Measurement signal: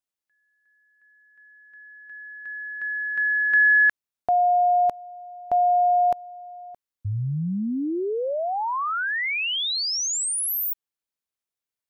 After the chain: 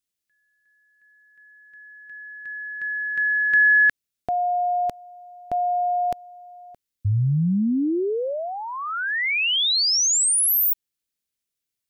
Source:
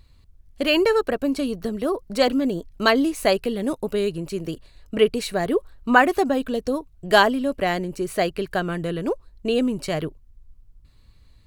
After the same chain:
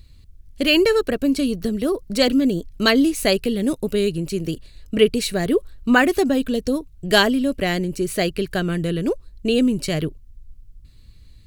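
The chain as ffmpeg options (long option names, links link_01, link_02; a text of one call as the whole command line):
ffmpeg -i in.wav -af "equalizer=frequency=910:width=0.82:gain=-12,volume=6.5dB" out.wav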